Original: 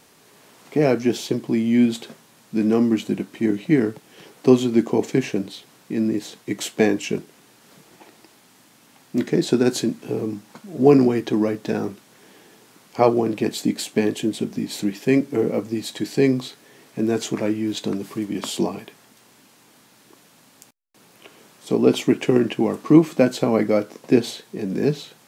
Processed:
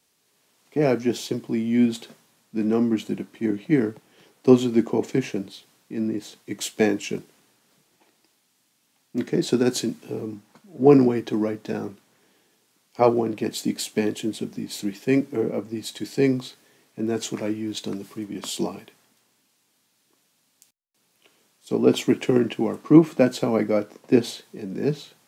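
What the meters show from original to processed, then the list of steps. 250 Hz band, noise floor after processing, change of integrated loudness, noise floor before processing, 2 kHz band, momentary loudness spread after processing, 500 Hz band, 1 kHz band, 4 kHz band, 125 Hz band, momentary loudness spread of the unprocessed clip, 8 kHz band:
−2.5 dB, −68 dBFS, −2.5 dB, −54 dBFS, −3.0 dB, 15 LU, −2.0 dB, −2.5 dB, −2.0 dB, −2.5 dB, 11 LU, −1.5 dB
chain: multiband upward and downward expander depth 40%
level −3.5 dB

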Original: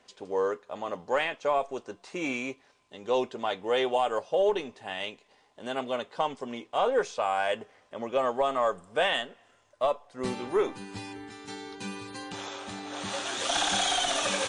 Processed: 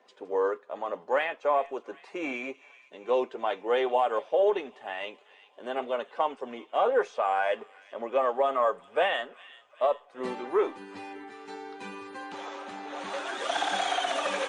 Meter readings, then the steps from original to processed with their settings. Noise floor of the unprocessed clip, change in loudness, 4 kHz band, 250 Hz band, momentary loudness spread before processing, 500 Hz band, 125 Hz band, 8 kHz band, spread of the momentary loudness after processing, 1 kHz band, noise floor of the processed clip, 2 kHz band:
−64 dBFS, +0.5 dB, −6.0 dB, −2.5 dB, 14 LU, +1.0 dB, below −10 dB, below −10 dB, 15 LU, +1.5 dB, −58 dBFS, −0.5 dB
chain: spectral magnitudes quantised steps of 15 dB
three-way crossover with the lows and the highs turned down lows −22 dB, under 260 Hz, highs −13 dB, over 2,600 Hz
delay with a high-pass on its return 386 ms, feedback 63%, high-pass 2,300 Hz, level −16 dB
level +2 dB

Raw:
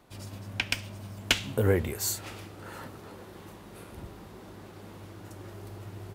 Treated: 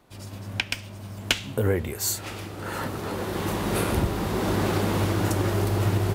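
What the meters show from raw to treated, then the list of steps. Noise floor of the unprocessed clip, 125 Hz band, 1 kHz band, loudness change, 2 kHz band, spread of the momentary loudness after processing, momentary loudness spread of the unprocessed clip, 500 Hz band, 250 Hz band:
−48 dBFS, +10.0 dB, +13.0 dB, +5.0 dB, +4.5 dB, 10 LU, 21 LU, +6.5 dB, +10.5 dB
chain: camcorder AGC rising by 11 dB per second

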